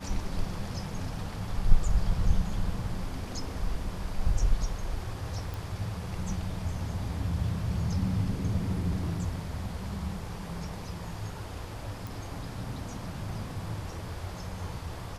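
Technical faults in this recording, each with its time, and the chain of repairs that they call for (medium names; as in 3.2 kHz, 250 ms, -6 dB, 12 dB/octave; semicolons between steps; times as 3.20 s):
5.54 s: pop
12.07 s: pop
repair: de-click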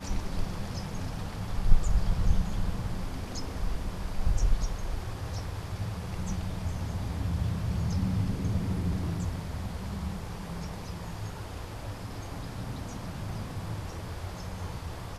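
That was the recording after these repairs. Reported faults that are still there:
5.54 s: pop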